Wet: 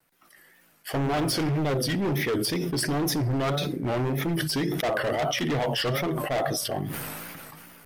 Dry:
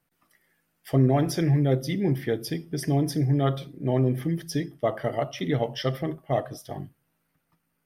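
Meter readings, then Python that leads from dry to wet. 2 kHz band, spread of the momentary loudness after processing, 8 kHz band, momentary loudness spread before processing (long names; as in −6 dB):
+8.0 dB, 8 LU, +8.0 dB, 9 LU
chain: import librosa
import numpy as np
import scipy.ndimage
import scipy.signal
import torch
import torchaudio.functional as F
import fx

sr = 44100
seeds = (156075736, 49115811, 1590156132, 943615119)

y = fx.low_shelf(x, sr, hz=240.0, db=-9.5)
y = np.clip(y, -10.0 ** (-31.0 / 20.0), 10.0 ** (-31.0 / 20.0))
y = fx.wow_flutter(y, sr, seeds[0], rate_hz=2.1, depth_cents=120.0)
y = fx.sustainer(y, sr, db_per_s=21.0)
y = F.gain(torch.from_numpy(y), 7.5).numpy()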